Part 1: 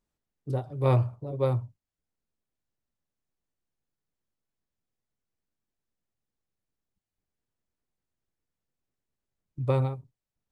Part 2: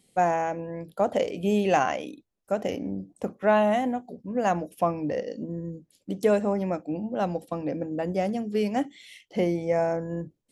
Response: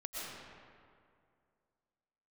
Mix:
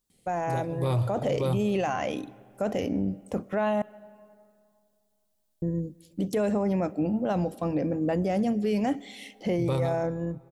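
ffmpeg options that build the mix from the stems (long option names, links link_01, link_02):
-filter_complex "[0:a]aexciter=amount=2.8:drive=5.3:freq=3200,volume=-3dB,asplit=2[link_01][link_02];[link_02]volume=-17.5dB[link_03];[1:a]lowshelf=frequency=99:gain=10,alimiter=limit=-19.5dB:level=0:latency=1:release=13,adelay=100,volume=-2dB,asplit=3[link_04][link_05][link_06];[link_04]atrim=end=3.82,asetpts=PTS-STARTPTS,afade=type=out:start_time=3.816:duration=0.004:curve=hsin[link_07];[link_05]atrim=start=3.82:end=5.62,asetpts=PTS-STARTPTS,volume=0[link_08];[link_06]atrim=start=5.62,asetpts=PTS-STARTPTS,afade=type=in:duration=0.004:curve=hsin[link_09];[link_07][link_08][link_09]concat=n=3:v=0:a=1,asplit=2[link_10][link_11];[link_11]volume=-24dB[link_12];[2:a]atrim=start_sample=2205[link_13];[link_03][link_12]amix=inputs=2:normalize=0[link_14];[link_14][link_13]afir=irnorm=-1:irlink=0[link_15];[link_01][link_10][link_15]amix=inputs=3:normalize=0,dynaudnorm=framelen=150:gausssize=11:maxgain=5dB,alimiter=limit=-19dB:level=0:latency=1:release=15"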